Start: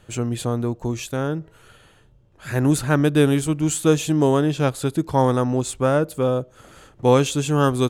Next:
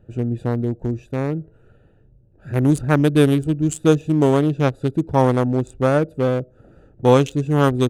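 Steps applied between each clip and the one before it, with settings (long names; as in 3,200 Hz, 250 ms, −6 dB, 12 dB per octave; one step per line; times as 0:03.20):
adaptive Wiener filter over 41 samples
level +2.5 dB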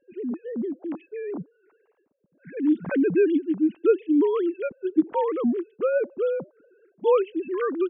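three sine waves on the formant tracks
level −6 dB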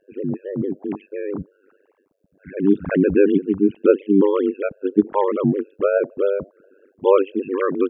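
amplitude modulation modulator 98 Hz, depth 100%
level +9 dB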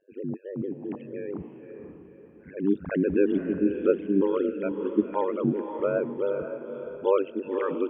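feedback delay with all-pass diffusion 531 ms, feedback 41%, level −8 dB
level −8 dB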